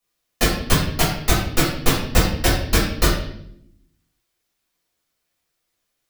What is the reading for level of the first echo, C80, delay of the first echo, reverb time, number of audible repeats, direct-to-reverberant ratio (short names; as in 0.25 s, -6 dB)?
none, 6.5 dB, none, 0.70 s, none, -8.0 dB